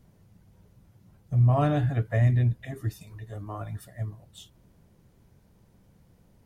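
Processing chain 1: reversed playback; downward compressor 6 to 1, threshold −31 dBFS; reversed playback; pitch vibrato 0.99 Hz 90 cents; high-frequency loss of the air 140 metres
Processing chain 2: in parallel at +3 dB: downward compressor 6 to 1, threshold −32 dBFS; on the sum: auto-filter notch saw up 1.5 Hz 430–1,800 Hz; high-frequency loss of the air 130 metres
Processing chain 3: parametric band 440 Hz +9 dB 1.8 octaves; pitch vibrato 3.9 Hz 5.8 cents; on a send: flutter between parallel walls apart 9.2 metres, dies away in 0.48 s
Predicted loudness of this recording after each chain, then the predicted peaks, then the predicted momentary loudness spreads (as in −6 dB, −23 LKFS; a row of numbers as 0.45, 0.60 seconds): −37.0, −24.5, −24.0 LKFS; −24.5, −11.0, −7.0 dBFS; 13, 13, 18 LU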